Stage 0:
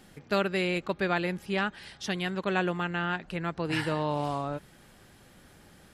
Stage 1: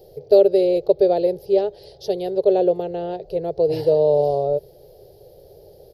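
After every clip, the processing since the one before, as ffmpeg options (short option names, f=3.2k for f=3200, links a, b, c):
-af "firequalizer=gain_entry='entry(140,0);entry(230,-22);entry(410,15);entry(600,11);entry(1100,-23);entry(1500,-26);entry(2300,-21);entry(4600,0);entry(8000,-23);entry(12000,4)':delay=0.05:min_phase=1,volume=5.5dB"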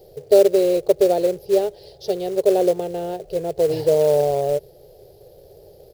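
-af "acrusher=bits=5:mode=log:mix=0:aa=0.000001"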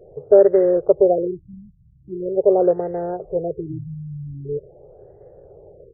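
-af "afftfilt=real='re*lt(b*sr/1024,220*pow(2100/220,0.5+0.5*sin(2*PI*0.43*pts/sr)))':imag='im*lt(b*sr/1024,220*pow(2100/220,0.5+0.5*sin(2*PI*0.43*pts/sr)))':win_size=1024:overlap=0.75,volume=1.5dB"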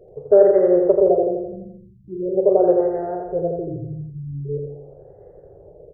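-filter_complex "[0:a]asplit=2[a][b];[b]adelay=42,volume=-12dB[c];[a][c]amix=inputs=2:normalize=0,asplit=2[d][e];[e]aecho=0:1:84|168|252|336|420|504|588:0.631|0.347|0.191|0.105|0.0577|0.0318|0.0175[f];[d][f]amix=inputs=2:normalize=0,volume=-1.5dB"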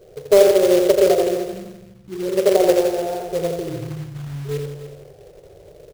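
-af "acrusher=bits=3:mode=log:mix=0:aa=0.000001,aecho=1:1:295:0.237"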